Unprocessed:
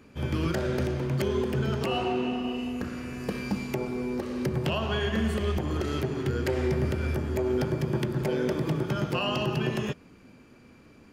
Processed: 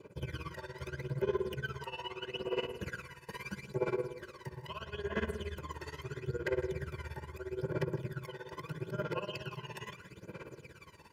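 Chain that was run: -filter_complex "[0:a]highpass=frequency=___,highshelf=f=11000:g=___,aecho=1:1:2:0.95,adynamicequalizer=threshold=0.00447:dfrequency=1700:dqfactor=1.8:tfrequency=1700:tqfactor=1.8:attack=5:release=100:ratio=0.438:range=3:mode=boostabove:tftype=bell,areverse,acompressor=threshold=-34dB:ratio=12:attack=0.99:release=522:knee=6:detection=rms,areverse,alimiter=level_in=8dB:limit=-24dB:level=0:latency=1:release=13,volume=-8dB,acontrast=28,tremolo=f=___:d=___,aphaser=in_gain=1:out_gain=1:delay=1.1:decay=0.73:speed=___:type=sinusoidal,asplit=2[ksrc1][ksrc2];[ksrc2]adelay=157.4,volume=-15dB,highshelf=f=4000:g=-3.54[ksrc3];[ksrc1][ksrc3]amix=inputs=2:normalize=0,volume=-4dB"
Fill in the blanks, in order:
150, 3, 17, 0.89, 0.77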